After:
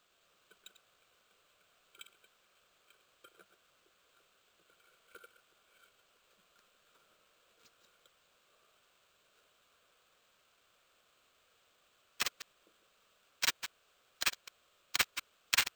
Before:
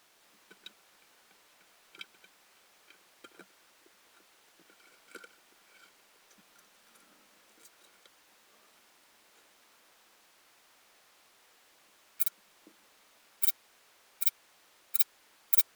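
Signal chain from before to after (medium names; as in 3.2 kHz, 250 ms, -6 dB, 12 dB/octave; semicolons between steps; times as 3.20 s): chunks repeated in reverse 102 ms, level -10 dB; static phaser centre 1.3 kHz, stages 8; sample-rate reducer 11 kHz, jitter 0%; trim -5 dB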